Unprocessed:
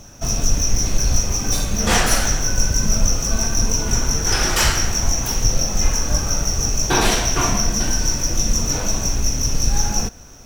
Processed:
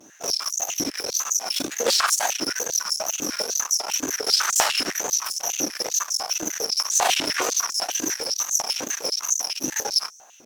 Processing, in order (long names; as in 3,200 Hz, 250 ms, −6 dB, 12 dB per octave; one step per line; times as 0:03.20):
tape wow and flutter 130 cents
harmonic generator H 8 −16 dB, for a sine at −2 dBFS
high-pass on a step sequencer 10 Hz 300–6,800 Hz
level −7 dB